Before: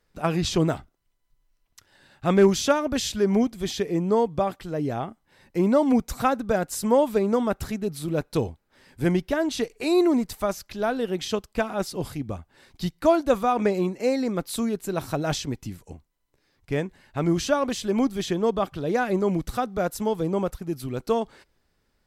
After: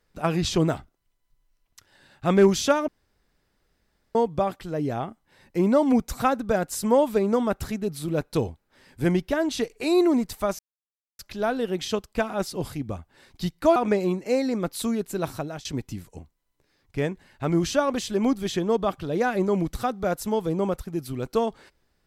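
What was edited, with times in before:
2.88–4.15 room tone
10.59 insert silence 0.60 s
13.16–13.5 cut
14.99–15.39 fade out, to -22.5 dB

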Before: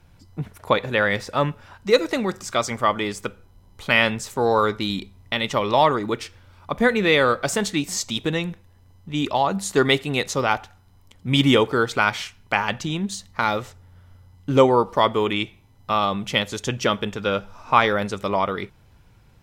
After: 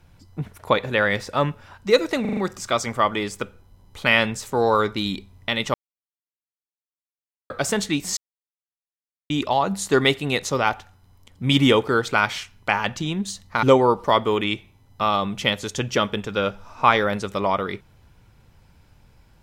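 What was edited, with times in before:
2.21 stutter 0.04 s, 5 plays
5.58–7.34 mute
8.01–9.14 mute
13.47–14.52 cut

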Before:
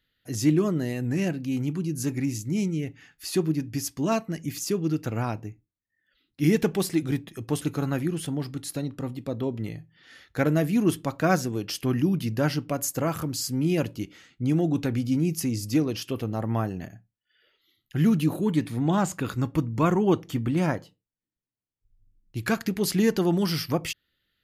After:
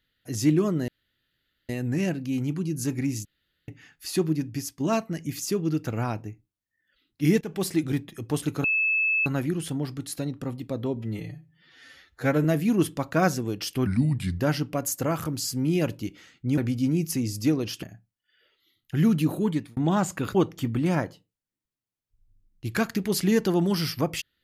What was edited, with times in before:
0.88 insert room tone 0.81 s
2.44–2.87 room tone
3.67–3.99 fade out, to -7.5 dB
6.6–6.87 fade in, from -20.5 dB
7.83 add tone 2610 Hz -20.5 dBFS 0.62 s
9.53–10.52 stretch 1.5×
11.94–12.36 speed 79%
14.54–14.86 cut
16.11–16.84 cut
18.48–18.78 fade out
19.36–20.06 cut

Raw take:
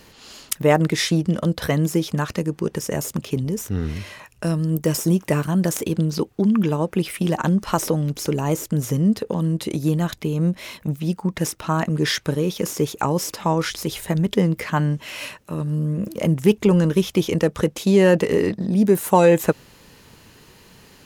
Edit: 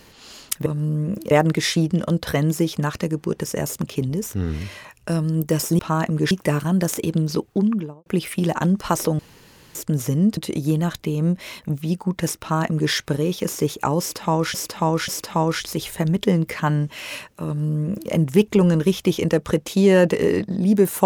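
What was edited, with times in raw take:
6.36–6.89 studio fade out
8.02–8.58 room tone
9.2–9.55 cut
11.58–12.1 copy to 5.14
13.18–13.72 loop, 3 plays
15.56–16.21 copy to 0.66

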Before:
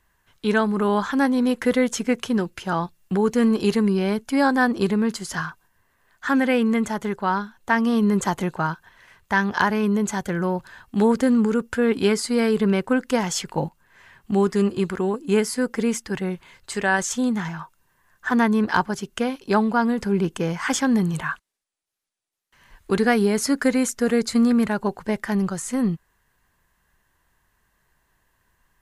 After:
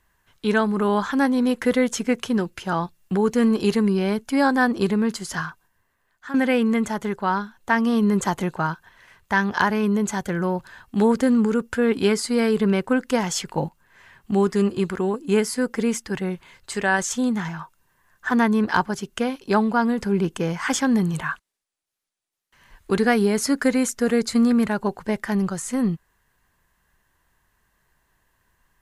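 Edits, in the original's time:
5.37–6.34 fade out, to -13 dB

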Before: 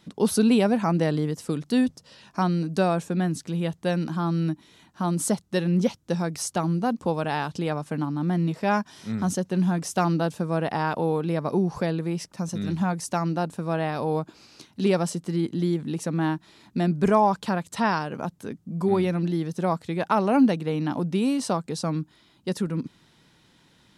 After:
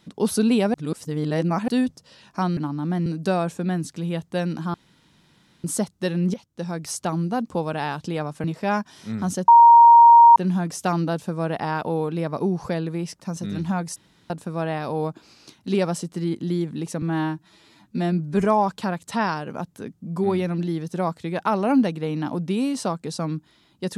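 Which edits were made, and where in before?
0.74–1.68 reverse
4.25–5.15 room tone
5.85–6.39 fade in, from -15.5 dB
7.95–8.44 move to 2.57
9.48 add tone 936 Hz -6.5 dBFS 0.88 s
13.08–13.42 room tone
16.14–17.09 stretch 1.5×

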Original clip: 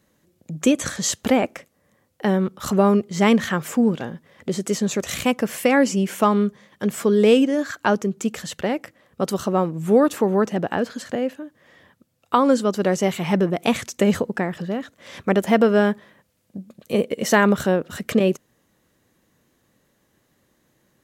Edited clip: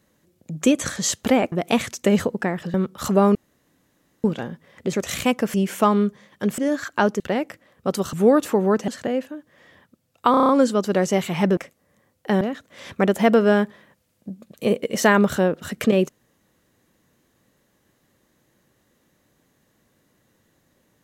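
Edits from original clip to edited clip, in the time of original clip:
1.52–2.36 swap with 13.47–14.69
2.97–3.86 room tone
4.55–4.93 cut
5.54–5.94 cut
6.98–7.45 cut
8.07–8.54 cut
9.47–9.81 cut
10.56–10.96 cut
12.39 stutter 0.03 s, 7 plays

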